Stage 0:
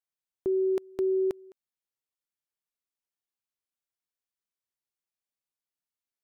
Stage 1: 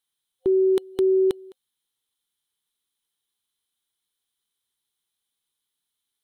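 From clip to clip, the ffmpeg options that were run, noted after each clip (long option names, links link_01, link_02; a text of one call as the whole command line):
ffmpeg -i in.wav -af "superequalizer=8b=0.316:13b=3.55:16b=2.51,volume=7dB" out.wav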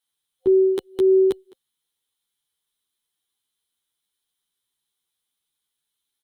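ffmpeg -i in.wav -filter_complex "[0:a]asplit=2[link_01][link_02];[link_02]adelay=10.2,afreqshift=1.6[link_03];[link_01][link_03]amix=inputs=2:normalize=1,volume=4dB" out.wav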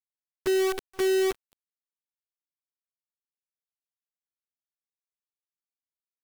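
ffmpeg -i in.wav -af "acrusher=bits=4:dc=4:mix=0:aa=0.000001,volume=-8.5dB" out.wav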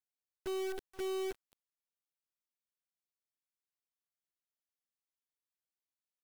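ffmpeg -i in.wav -af "volume=29.5dB,asoftclip=hard,volume=-29.5dB,volume=-5dB" out.wav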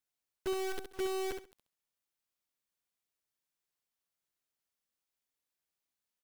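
ffmpeg -i in.wav -af "aecho=1:1:67|134|201:0.447|0.0938|0.0197,volume=4dB" out.wav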